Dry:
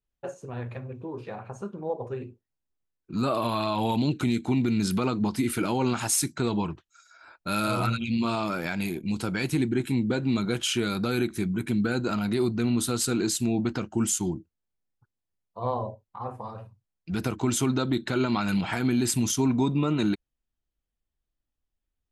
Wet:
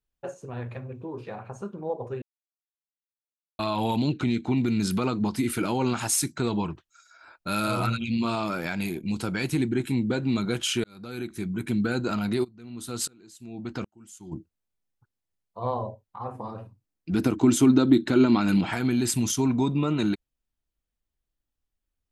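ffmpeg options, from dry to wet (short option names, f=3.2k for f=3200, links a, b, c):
-filter_complex "[0:a]asettb=1/sr,asplit=3[a][b][c];[a]atrim=end=4.114[d];[b]atrim=start=4.11:end=4.58,asetpts=PTS-STARTPTS,afade=t=in:d=0.004:c=qsin,afade=t=out:st=0.466:d=0.004:c=qsin,lowpass=5k[e];[c]atrim=start=4.576[f];[d][e]acrossfade=d=0.004:c1=hsin:c2=qsin[g];[g][f]acrossfade=d=0.004:c1=qsin:c2=hsin,asplit=3[h][i][j];[h]afade=t=out:st=12.43:d=0.02[k];[i]aeval=exprs='val(0)*pow(10,-33*if(lt(mod(-1.3*n/s,1),2*abs(-1.3)/1000),1-mod(-1.3*n/s,1)/(2*abs(-1.3)/1000),(mod(-1.3*n/s,1)-2*abs(-1.3)/1000)/(1-2*abs(-1.3)/1000))/20)':c=same,afade=t=in:st=12.43:d=0.02,afade=t=out:st=14.31:d=0.02[l];[j]afade=t=in:st=14.31:d=0.02[m];[k][l][m]amix=inputs=3:normalize=0,asettb=1/sr,asplit=3[n][o][p];[n]atrim=end=16.354[q];[o]atrim=start=16.35:end=18.7,asetpts=PTS-STARTPTS,afade=t=in:d=0.004:c=qsin,afade=t=out:st=2.346:d=0.004:c=qsin,equalizer=f=290:t=o:w=0.77:g=11[r];[p]atrim=start=18.696[s];[q][r]acrossfade=d=0.004:c1=hsin:c2=qsin[t];[t][s]acrossfade=d=0.004:c1=qsin:c2=hsin,asplit=4[u][v][w][x];[u]atrim=end=2.22,asetpts=PTS-STARTPTS,afade=t=out:st=2.216:d=0.004:c=hsin[y];[v]atrim=start=2.22:end=3.59,asetpts=PTS-STARTPTS,volume=0[z];[w]atrim=start=3.59:end=10.84,asetpts=PTS-STARTPTS,afade=t=in:d=0.004:c=hsin,afade=t=out:st=7.246:d=0.004:c=hsin[aa];[x]atrim=start=10.84,asetpts=PTS-STARTPTS,afade=t=in:d=0.89[ab];[y][z][aa][ab]concat=n=4:v=0:a=1"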